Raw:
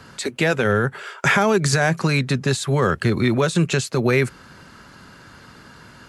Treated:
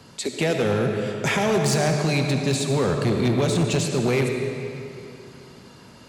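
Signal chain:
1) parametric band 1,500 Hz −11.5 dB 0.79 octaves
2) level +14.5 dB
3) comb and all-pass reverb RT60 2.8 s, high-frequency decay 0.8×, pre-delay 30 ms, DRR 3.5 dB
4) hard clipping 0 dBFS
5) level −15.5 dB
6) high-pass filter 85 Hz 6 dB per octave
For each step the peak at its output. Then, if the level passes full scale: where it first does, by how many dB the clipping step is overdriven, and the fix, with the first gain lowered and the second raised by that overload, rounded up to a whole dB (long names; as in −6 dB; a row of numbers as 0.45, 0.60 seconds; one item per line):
−6.0, +8.5, +9.5, 0.0, −15.5, −12.0 dBFS
step 2, 9.5 dB
step 2 +4.5 dB, step 5 −5.5 dB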